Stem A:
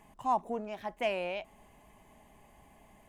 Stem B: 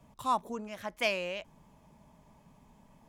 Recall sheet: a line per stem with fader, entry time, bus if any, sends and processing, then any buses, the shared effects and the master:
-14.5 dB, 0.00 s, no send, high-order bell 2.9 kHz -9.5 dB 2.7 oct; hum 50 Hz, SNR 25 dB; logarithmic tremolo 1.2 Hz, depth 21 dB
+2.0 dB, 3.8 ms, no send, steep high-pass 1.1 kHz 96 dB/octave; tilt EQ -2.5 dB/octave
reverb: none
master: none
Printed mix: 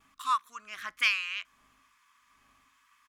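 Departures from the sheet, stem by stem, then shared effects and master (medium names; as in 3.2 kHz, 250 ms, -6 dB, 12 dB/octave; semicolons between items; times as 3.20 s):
stem B +2.0 dB -> +10.0 dB; master: extra peaking EQ 270 Hz +14 dB 0.24 oct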